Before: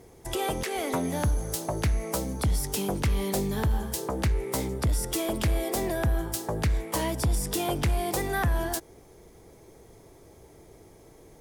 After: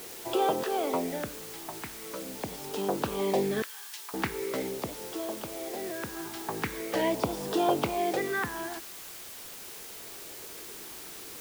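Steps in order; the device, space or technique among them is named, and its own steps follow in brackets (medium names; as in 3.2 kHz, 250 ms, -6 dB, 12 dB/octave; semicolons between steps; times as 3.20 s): shortwave radio (band-pass 310–2600 Hz; tremolo 0.27 Hz, depth 73%; LFO notch sine 0.43 Hz 530–2200 Hz; white noise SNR 11 dB); 3.62–4.14 s: Bessel high-pass 2.8 kHz, order 2; trim +6 dB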